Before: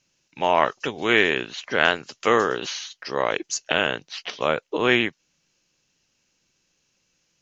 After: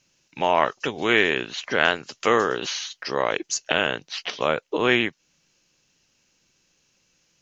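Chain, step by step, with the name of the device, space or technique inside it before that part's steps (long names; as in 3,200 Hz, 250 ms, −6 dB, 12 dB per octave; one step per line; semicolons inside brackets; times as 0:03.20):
parallel compression (in parallel at −1 dB: downward compressor, threshold −30 dBFS, peak gain reduction 16.5 dB)
on the sum: level −2 dB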